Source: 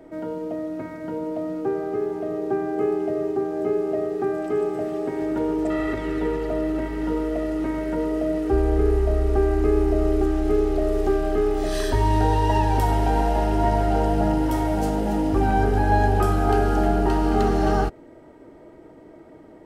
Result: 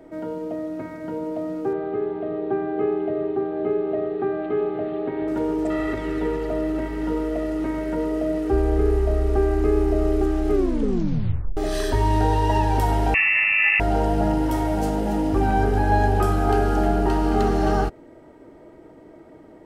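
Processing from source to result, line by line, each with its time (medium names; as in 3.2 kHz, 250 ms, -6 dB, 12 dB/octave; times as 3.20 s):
1.73–5.28 s: steep low-pass 4.1 kHz 72 dB/octave
10.51 s: tape stop 1.06 s
13.14–13.80 s: frequency inversion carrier 2.7 kHz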